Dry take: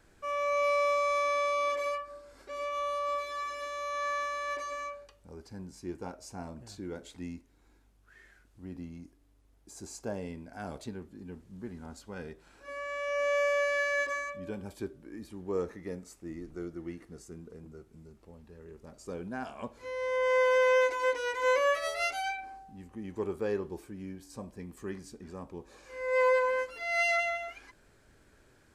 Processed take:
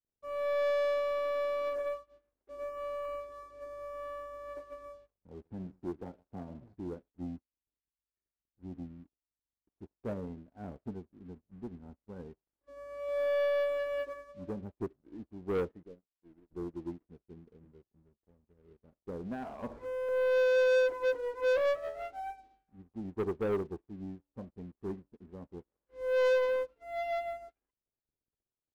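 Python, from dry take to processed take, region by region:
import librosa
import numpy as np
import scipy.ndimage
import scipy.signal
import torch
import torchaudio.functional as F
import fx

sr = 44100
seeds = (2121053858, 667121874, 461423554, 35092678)

y = fx.chain(x, sr, fx.echo_single(ms=130, db=-15.5),
    fx.band_squash(depth_pct=40), at=(3.05, 6.74))
y = fx.chain(y, sr, fx.halfwave_gain(db=-3.0),
    fx.ladder_lowpass(hz=710.0, resonance_pct=45), at=(15.83, 16.51))
y = fx.chain(y, sr, fx.tilt_shelf(db=-5.5, hz=740.0),
    fx.env_flatten(amount_pct=70), at=(19.31, 20.09))
y = scipy.signal.sosfilt(scipy.signal.bessel(2, 540.0, 'lowpass', norm='mag', fs=sr, output='sos'), y)
y = fx.leveller(y, sr, passes=3)
y = fx.upward_expand(y, sr, threshold_db=-49.0, expansion=2.5)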